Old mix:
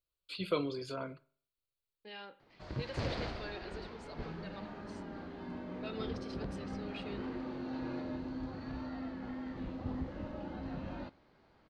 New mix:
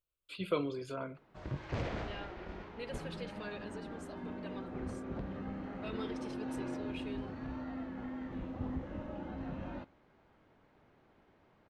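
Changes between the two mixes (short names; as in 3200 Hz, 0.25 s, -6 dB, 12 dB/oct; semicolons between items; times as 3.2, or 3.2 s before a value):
second voice: remove air absorption 76 m; background: entry -1.25 s; master: add bell 4500 Hz -10.5 dB 0.49 oct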